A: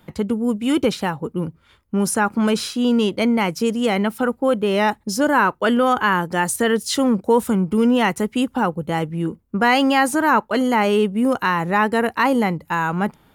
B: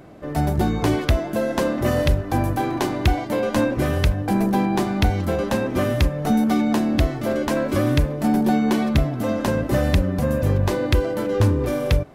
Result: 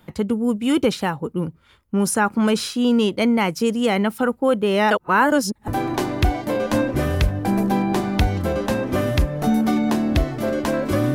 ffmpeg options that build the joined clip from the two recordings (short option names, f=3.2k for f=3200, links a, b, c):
-filter_complex "[0:a]apad=whole_dur=11.14,atrim=end=11.14,asplit=2[a][b];[a]atrim=end=4.912[c];[b]atrim=start=4.908:end=5.682,asetpts=PTS-STARTPTS,areverse[d];[1:a]atrim=start=2.508:end=7.97[e];[c][d]acrossfade=d=0.004:c1=hsin:c2=hsin[f];[f][e]acrossfade=d=0.004:c1=hsin:c2=hsin"